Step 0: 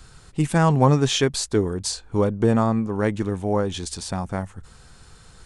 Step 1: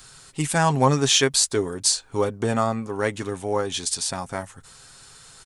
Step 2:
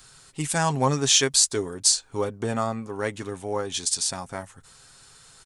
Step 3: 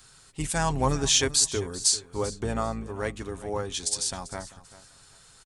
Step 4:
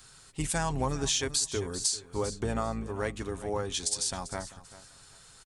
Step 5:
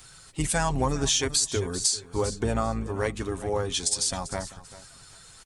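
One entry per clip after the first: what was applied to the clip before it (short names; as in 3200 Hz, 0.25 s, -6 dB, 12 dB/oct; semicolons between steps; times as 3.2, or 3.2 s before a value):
tilt +2.5 dB/oct; comb 7.4 ms, depth 40%
dynamic EQ 6700 Hz, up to +6 dB, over -34 dBFS, Q 0.73; gain -4 dB
octaver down 2 oct, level -3 dB; feedback echo 0.392 s, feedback 23%, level -17 dB; gain -3 dB
compressor 5:1, threshold -26 dBFS, peak gain reduction 8.5 dB
bin magnitudes rounded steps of 15 dB; gain +5 dB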